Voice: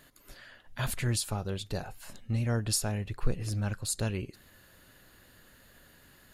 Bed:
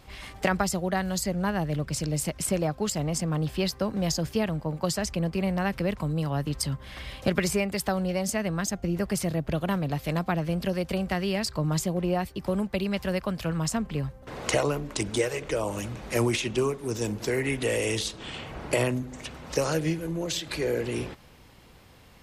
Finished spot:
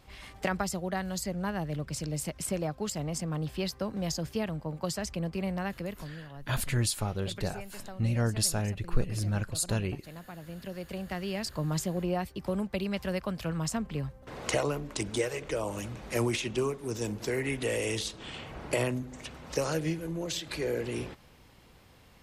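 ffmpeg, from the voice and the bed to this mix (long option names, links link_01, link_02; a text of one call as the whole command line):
ffmpeg -i stem1.wav -i stem2.wav -filter_complex "[0:a]adelay=5700,volume=1.5dB[link_01];[1:a]volume=8.5dB,afade=type=out:start_time=5.54:duration=0.69:silence=0.237137,afade=type=in:start_time=10.35:duration=1.4:silence=0.199526[link_02];[link_01][link_02]amix=inputs=2:normalize=0" out.wav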